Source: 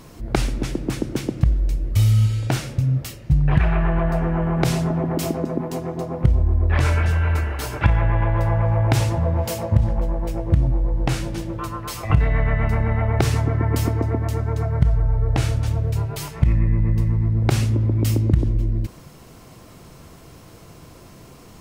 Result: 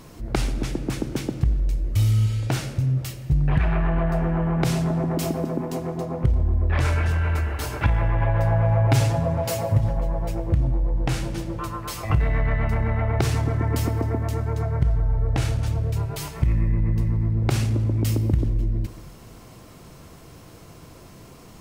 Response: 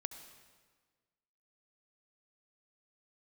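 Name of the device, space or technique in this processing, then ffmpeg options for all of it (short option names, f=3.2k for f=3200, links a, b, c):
saturated reverb return: -filter_complex "[0:a]asplit=2[a][b];[1:a]atrim=start_sample=2205[c];[b][c]afir=irnorm=-1:irlink=0,asoftclip=type=tanh:threshold=-18.5dB,volume=2dB[d];[a][d]amix=inputs=2:normalize=0,asettb=1/sr,asplit=3[e][f][g];[e]atrim=end=8.204[h];[f]atrim=start=8.2:end=10.35,asetpts=PTS-STARTPTS,afade=t=in:d=0.004:c=qsin,afade=t=out:st=2.146:d=0.004:c=qsin,aecho=1:1:7.3:0.7,atrim=end_sample=94815[i];[g]atrim=start=10.346[j];[h][i]acrossfade=d=0.004:c1=hsin:c2=qsin[k];[k][j]acrossfade=d=0.004:c1=qsin:c2=hsin,volume=-7dB"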